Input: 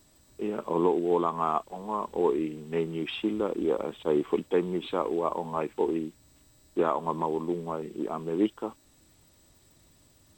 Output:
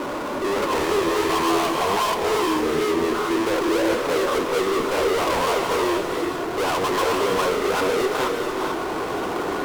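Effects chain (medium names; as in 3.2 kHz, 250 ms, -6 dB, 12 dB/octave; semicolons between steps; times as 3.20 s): gliding tape speed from 93% -> 122%; high-pass 450 Hz 12 dB/octave; low-pass that closes with the level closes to 910 Hz, closed at -25.5 dBFS; in parallel at 0 dB: upward compressor, threshold -31 dBFS; on the sum: rippled Chebyshev low-pass 1.5 kHz, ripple 6 dB; power-law waveshaper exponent 0.35; one-sided clip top -24 dBFS, bottom -20.5 dBFS; on a send at -2 dB: reverberation, pre-delay 3 ms; on the sum: attacks held to a fixed rise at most 120 dB/s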